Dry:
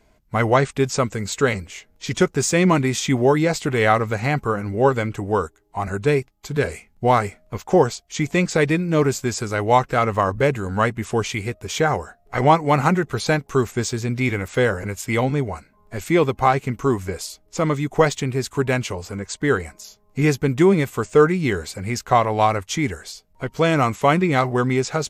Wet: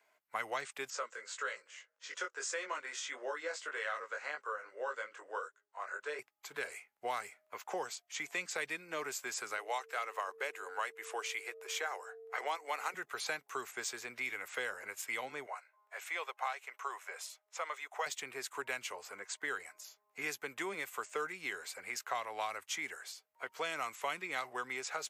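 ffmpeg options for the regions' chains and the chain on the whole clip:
ffmpeg -i in.wav -filter_complex "[0:a]asettb=1/sr,asplit=3[link_01][link_02][link_03];[link_01]atrim=end=0.904[link_04];[link_02]atrim=start=0.9:end=6.19,asetpts=PTS-STARTPTS,afade=type=in:duration=0.004:curve=qsin,afade=type=out:start_time=5.286:duration=0.004:curve=qsin,highpass=470,equalizer=frequency=520:width_type=q:width=4:gain=8,equalizer=frequency=770:width_type=q:width=4:gain=-9,equalizer=frequency=1500:width_type=q:width=4:gain=4,equalizer=frequency=2300:width_type=q:width=4:gain=-7,equalizer=frequency=3800:width_type=q:width=4:gain=-3,lowpass=frequency=7700:width=0.5412,lowpass=frequency=7700:width=1.3066,flanger=delay=19.5:depth=2.7:speed=1.7[link_05];[link_03]atrim=start=6.186[link_06];[link_04][link_05]acrossfade=duration=0.004:curve1=hsin:curve2=qsin[link_07];[link_07][link_06]acrossfade=duration=0.004:curve1=qsin:curve2=hsin,asettb=1/sr,asplit=3[link_08][link_09][link_10];[link_08]atrim=end=9.574[link_11];[link_09]atrim=start=9.57:end=12.94,asetpts=PTS-STARTPTS,afade=type=in:duration=0.004:curve=qsin,afade=type=out:start_time=3.366:duration=0.004:curve=qsin,highpass=frequency=350:width=0.5412,highpass=frequency=350:width=1.3066,aeval=exprs='val(0)+0.0282*sin(2*PI*450*n/s)':channel_layout=same[link_12];[link_10]atrim=start=12.936[link_13];[link_11][link_12]acrossfade=duration=0.004:curve1=hsin:curve2=qsin[link_14];[link_14][link_13]acrossfade=duration=0.004:curve1=qsin:curve2=hsin,asettb=1/sr,asplit=3[link_15][link_16][link_17];[link_15]atrim=end=15.464[link_18];[link_16]atrim=start=15.46:end=18.06,asetpts=PTS-STARTPTS,afade=type=in:duration=0.004:curve=qsin,afade=type=out:start_time=2.596:duration=0.004:curve=qsin,highpass=frequency=520:width=0.5412,highpass=frequency=520:width=1.3066,highshelf=frequency=11000:gain=-10,bandreject=frequency=4600:width=11[link_19];[link_17]atrim=start=18.056[link_20];[link_18][link_19]acrossfade=duration=0.004:curve1=hsin:curve2=qsin[link_21];[link_21][link_20]acrossfade=duration=0.004:curve1=qsin:curve2=hsin,aderivative,acrossover=split=240|3000[link_22][link_23][link_24];[link_23]acompressor=threshold=-43dB:ratio=6[link_25];[link_22][link_25][link_24]amix=inputs=3:normalize=0,acrossover=split=370 2200:gain=0.141 1 0.1[link_26][link_27][link_28];[link_26][link_27][link_28]amix=inputs=3:normalize=0,volume=8.5dB" out.wav

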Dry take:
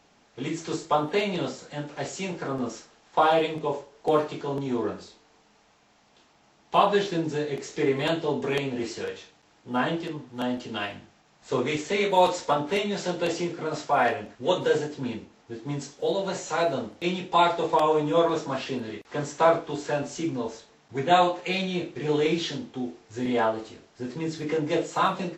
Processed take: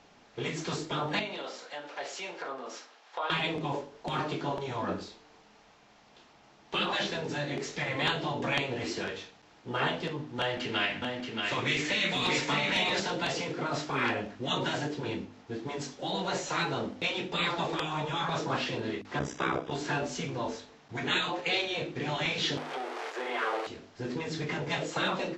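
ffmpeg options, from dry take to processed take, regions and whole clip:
ffmpeg -i in.wav -filter_complex "[0:a]asettb=1/sr,asplit=3[link_01][link_02][link_03];[link_01]atrim=end=1.194[link_04];[link_02]atrim=start=1.19:end=3.3,asetpts=PTS-STARTPTS,afade=type=in:duration=0.004:curve=qsin,afade=type=out:start_time=2.106:duration=0.004:curve=qsin,acompressor=threshold=-34dB:ratio=2.5:attack=3.2:release=140:knee=1:detection=peak,highpass=590,lowpass=6700[link_05];[link_03]atrim=start=3.296[link_06];[link_04][link_05]acrossfade=duration=0.004:curve1=hsin:curve2=qsin[link_07];[link_07][link_06]acrossfade=duration=0.004:curve1=qsin:curve2=hsin,asettb=1/sr,asplit=3[link_08][link_09][link_10];[link_08]atrim=end=10.394[link_11];[link_09]atrim=start=10.39:end=13,asetpts=PTS-STARTPTS,afade=type=in:duration=0.004:curve=qsin,afade=type=out:start_time=2.606:duration=0.004:curve=qsin,equalizer=frequency=2100:width=1.1:gain=10.5,acrossover=split=370|3000[link_12][link_13][link_14];[link_13]acompressor=threshold=-36dB:ratio=2:attack=3.2:release=140:knee=2.83:detection=peak[link_15];[link_12][link_15][link_14]amix=inputs=3:normalize=0,aecho=1:1:628:0.562,atrim=end_sample=115101[link_16];[link_10]atrim=start=12.996[link_17];[link_11][link_16]acrossfade=duration=0.004:curve1=hsin:curve2=qsin[link_18];[link_18][link_17]acrossfade=duration=0.004:curve1=qsin:curve2=hsin,asettb=1/sr,asplit=3[link_19][link_20][link_21];[link_19]atrim=end=19.194[link_22];[link_20]atrim=start=19.19:end=19.72,asetpts=PTS-STARTPTS,afade=type=in:duration=0.004:curve=qsin,afade=type=out:start_time=0.526:duration=0.004:curve=qsin,tremolo=f=65:d=0.857,asuperstop=centerf=4300:order=12:qfactor=7.4[link_23];[link_21]atrim=start=19.716[link_24];[link_22][link_23]acrossfade=duration=0.004:curve1=hsin:curve2=qsin[link_25];[link_25][link_24]acrossfade=duration=0.004:curve1=qsin:curve2=hsin,asettb=1/sr,asplit=3[link_26][link_27][link_28];[link_26]atrim=end=22.574[link_29];[link_27]atrim=start=22.57:end=23.67,asetpts=PTS-STARTPTS,afade=type=in:duration=0.004:curve=qsin,afade=type=out:start_time=1.096:duration=0.004:curve=qsin,aeval=exprs='val(0)+0.5*0.0316*sgn(val(0))':channel_layout=same,acrossover=split=2700[link_30][link_31];[link_31]acompressor=threshold=-48dB:ratio=4:attack=1:release=60[link_32];[link_30][link_32]amix=inputs=2:normalize=0,highpass=frequency=490:width=0.5412,highpass=frequency=490:width=1.3066[link_33];[link_28]atrim=start=23.666[link_34];[link_29][link_33]acrossfade=duration=0.004:curve1=hsin:curve2=qsin[link_35];[link_35][link_34]acrossfade=duration=0.004:curve1=qsin:curve2=hsin,bandreject=frequency=50.56:width_type=h:width=4,bandreject=frequency=101.12:width_type=h:width=4,bandreject=frequency=151.68:width_type=h:width=4,bandreject=frequency=202.24:width_type=h:width=4,bandreject=frequency=252.8:width_type=h:width=4,bandreject=frequency=303.36:width_type=h:width=4,afftfilt=real='re*lt(hypot(re,im),0.178)':imag='im*lt(hypot(re,im),0.178)':win_size=1024:overlap=0.75,lowpass=5800,volume=2.5dB" out.wav

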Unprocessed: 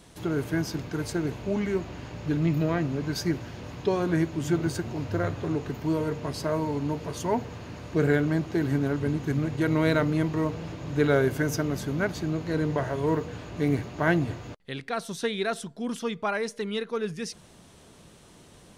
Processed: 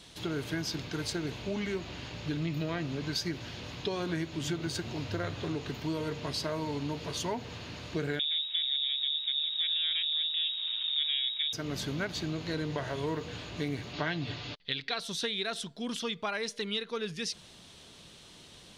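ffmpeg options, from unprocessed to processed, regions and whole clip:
ffmpeg -i in.wav -filter_complex "[0:a]asettb=1/sr,asplit=3[link_01][link_02][link_03];[link_01]atrim=end=8.194[link_04];[link_02]atrim=start=8.19:end=11.53,asetpts=PTS-STARTPTS,afade=type=in:duration=0.004:curve=qsin,afade=type=out:start_time=3.336:duration=0.004:curve=qsin,aeval=exprs='if(lt(val(0),0),0.251*val(0),val(0))':channel_layout=same,lowpass=frequency=3200:width_type=q:width=0.5098,lowpass=frequency=3200:width_type=q:width=0.6013,lowpass=frequency=3200:width_type=q:width=0.9,lowpass=frequency=3200:width_type=q:width=2.563,afreqshift=-3800[link_05];[link_03]atrim=start=11.526[link_06];[link_04][link_05]acrossfade=duration=0.004:curve1=hsin:curve2=qsin[link_07];[link_07][link_06]acrossfade=duration=0.004:curve1=qsin:curve2=hsin,asettb=1/sr,asplit=3[link_08][link_09][link_10];[link_08]atrim=end=13.934[link_11];[link_09]atrim=start=13.93:end=15,asetpts=PTS-STARTPTS,afade=type=in:duration=0.004:curve=qsin,afade=type=out:start_time=1.066:duration=0.004:curve=qsin,lowpass=frequency=4700:width=0.5412,lowpass=frequency=4700:width=1.3066,aemphasis=mode=production:type=75kf,aecho=1:1:6.9:0.41,atrim=end_sample=47187[link_12];[link_10]atrim=start=14.996[link_13];[link_11][link_12]acrossfade=duration=0.004:curve1=hsin:curve2=qsin[link_14];[link_14][link_13]acrossfade=duration=0.004:curve1=qsin:curve2=hsin,equalizer=frequency=3700:width_type=o:width=1.5:gain=13,acompressor=threshold=-25dB:ratio=6,volume=-4.5dB" out.wav

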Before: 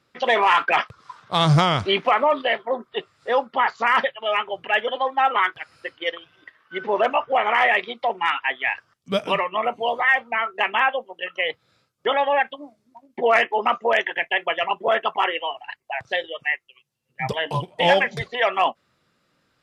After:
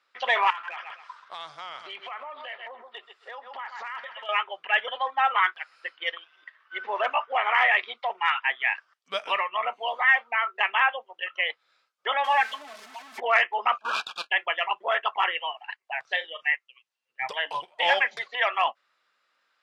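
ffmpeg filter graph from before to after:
ffmpeg -i in.wav -filter_complex "[0:a]asettb=1/sr,asplit=3[link_01][link_02][link_03];[link_01]atrim=end=0.504[link_04];[link_02]atrim=start=0.5:end=4.29,asetpts=PTS-STARTPTS,afade=type=in:duration=0.004:curve=qsin,afade=type=out:start_time=3.786:duration=0.004:curve=qsin,aecho=1:1:130|260:0.15|0.0344,atrim=end_sample=167139,acompressor=threshold=-30dB:ratio=8:attack=3.2:release=140:knee=1:detection=peak,aeval=exprs='clip(val(0),-1,0.0531)':channel_layout=same[link_05];[link_03]atrim=start=4.286[link_06];[link_04][link_05]acrossfade=duration=0.004:curve1=hsin:curve2=qsin[link_07];[link_07][link_06]acrossfade=duration=0.004:curve1=qsin:curve2=hsin,asettb=1/sr,asplit=3[link_08][link_09][link_10];[link_08]atrim=end=12.244[link_11];[link_09]atrim=start=12.24:end=13.2,asetpts=PTS-STARTPTS,afade=type=in:duration=0.004:curve=qsin,afade=type=out:start_time=0.956:duration=0.004:curve=qsin,aeval=exprs='val(0)+0.5*0.02*sgn(val(0))':channel_layout=same,aecho=1:1:4.6:0.91,atrim=end_sample=42336[link_12];[link_10]atrim=start=13.196[link_13];[link_11][link_12]acrossfade=duration=0.004:curve1=hsin:curve2=qsin[link_14];[link_14][link_13]acrossfade=duration=0.004:curve1=qsin:curve2=hsin,asettb=1/sr,asplit=3[link_15][link_16][link_17];[link_15]atrim=end=13.784[link_18];[link_16]atrim=start=13.78:end=14.3,asetpts=PTS-STARTPTS,afade=type=in:duration=0.004:curve=qsin,afade=type=out:start_time=0.516:duration=0.004:curve=qsin,equalizer=frequency=7900:width=0.81:gain=-11.5,aeval=exprs='abs(val(0))':channel_layout=same,asuperstop=centerf=2000:order=20:qfactor=3[link_19];[link_17]atrim=start=14.296[link_20];[link_18][link_19]acrossfade=duration=0.004:curve1=hsin:curve2=qsin[link_21];[link_21][link_20]acrossfade=duration=0.004:curve1=qsin:curve2=hsin,asettb=1/sr,asplit=3[link_22][link_23][link_24];[link_22]atrim=end=16.124[link_25];[link_23]atrim=start=16.12:end=16.54,asetpts=PTS-STARTPTS,afade=type=in:duration=0.004:curve=qsin,afade=type=out:start_time=0.416:duration=0.004:curve=qsin,highpass=150,asplit=2[link_26][link_27];[link_27]adelay=37,volume=-12.5dB[link_28];[link_26][link_28]amix=inputs=2:normalize=0,atrim=end_sample=18522[link_29];[link_24]atrim=start=16.536[link_30];[link_25][link_29]acrossfade=duration=0.004:curve1=hsin:curve2=qsin[link_31];[link_31][link_30]acrossfade=duration=0.004:curve1=qsin:curve2=hsin,highpass=1000,aemphasis=mode=reproduction:type=50fm" out.wav

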